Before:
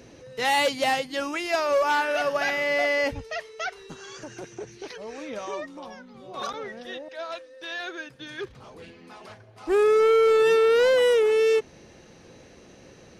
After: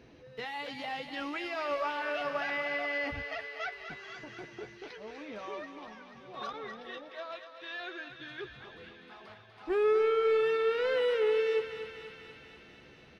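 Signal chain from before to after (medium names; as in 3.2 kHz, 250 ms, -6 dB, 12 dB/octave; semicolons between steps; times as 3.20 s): pre-emphasis filter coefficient 0.8; band-stop 550 Hz, Q 12; peak limiter -29 dBFS, peak gain reduction 11 dB; distance through air 370 m; doubling 14 ms -10.5 dB; thinning echo 244 ms, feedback 76%, high-pass 650 Hz, level -8 dB; trim +7 dB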